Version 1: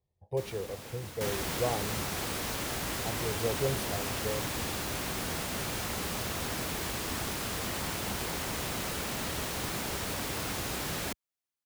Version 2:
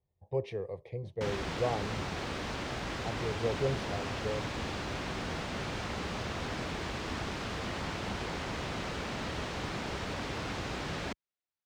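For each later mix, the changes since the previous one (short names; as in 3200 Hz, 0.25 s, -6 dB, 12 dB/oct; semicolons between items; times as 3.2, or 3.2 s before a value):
first sound: muted; master: add air absorption 140 m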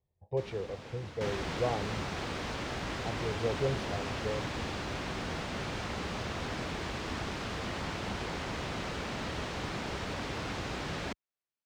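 first sound: unmuted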